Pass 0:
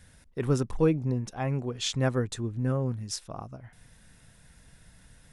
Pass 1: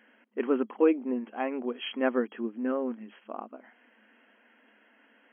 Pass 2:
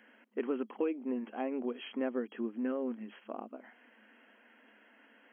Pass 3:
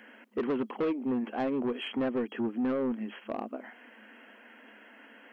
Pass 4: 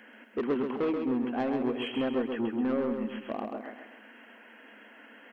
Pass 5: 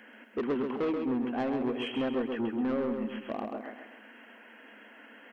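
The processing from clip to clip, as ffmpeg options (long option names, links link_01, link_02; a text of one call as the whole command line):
ffmpeg -i in.wav -af "afftfilt=real='re*between(b*sr/4096,210,3300)':imag='im*between(b*sr/4096,210,3300)':win_size=4096:overlap=0.75,volume=2dB" out.wav
ffmpeg -i in.wav -filter_complex "[0:a]acrossover=split=680|2300[link_01][link_02][link_03];[link_01]acompressor=threshold=-32dB:ratio=4[link_04];[link_02]acompressor=threshold=-49dB:ratio=4[link_05];[link_03]acompressor=threshold=-54dB:ratio=4[link_06];[link_04][link_05][link_06]amix=inputs=3:normalize=0" out.wav
ffmpeg -i in.wav -af "asoftclip=type=tanh:threshold=-33dB,volume=8.5dB" out.wav
ffmpeg -i in.wav -af "aecho=1:1:132|264|396|528|660:0.531|0.223|0.0936|0.0393|0.0165" out.wav
ffmpeg -i in.wav -af "asoftclip=type=tanh:threshold=-22dB" out.wav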